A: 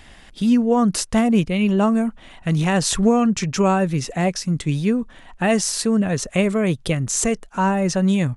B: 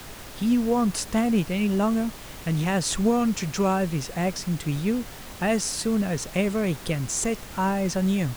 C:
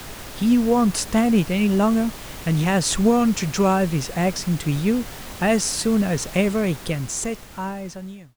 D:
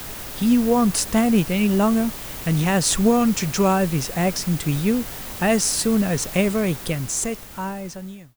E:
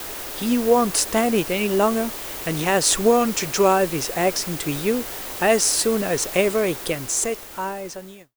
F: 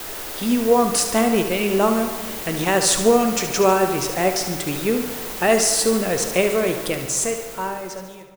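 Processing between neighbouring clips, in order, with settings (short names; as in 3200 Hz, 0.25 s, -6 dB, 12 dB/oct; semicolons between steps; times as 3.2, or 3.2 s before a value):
added noise pink -35 dBFS; gain -5.5 dB
ending faded out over 1.99 s; gain +4.5 dB
high shelf 11000 Hz +11 dB
resonant low shelf 260 Hz -8.5 dB, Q 1.5; gate with hold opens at -35 dBFS; gain +2 dB
feedback echo 72 ms, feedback 55%, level -10 dB; on a send at -9.5 dB: reverb RT60 2.0 s, pre-delay 5 ms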